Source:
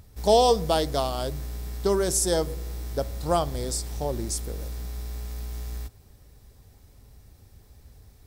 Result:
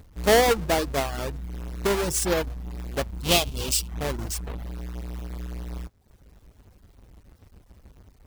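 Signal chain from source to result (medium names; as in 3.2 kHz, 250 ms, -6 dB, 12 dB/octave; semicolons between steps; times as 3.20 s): square wave that keeps the level; reverb removal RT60 0.69 s; 3.24–3.88 s: resonant high shelf 2.3 kHz +7.5 dB, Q 3; trim -3.5 dB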